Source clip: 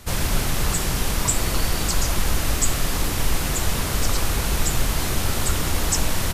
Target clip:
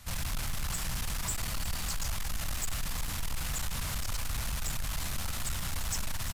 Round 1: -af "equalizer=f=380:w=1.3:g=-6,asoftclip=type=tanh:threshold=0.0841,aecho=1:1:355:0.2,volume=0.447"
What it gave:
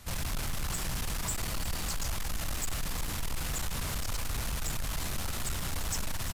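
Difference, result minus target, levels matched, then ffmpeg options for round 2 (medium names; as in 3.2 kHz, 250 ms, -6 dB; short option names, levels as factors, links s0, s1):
500 Hz band +4.0 dB
-af "equalizer=f=380:w=1.3:g=-15,asoftclip=type=tanh:threshold=0.0841,aecho=1:1:355:0.2,volume=0.447"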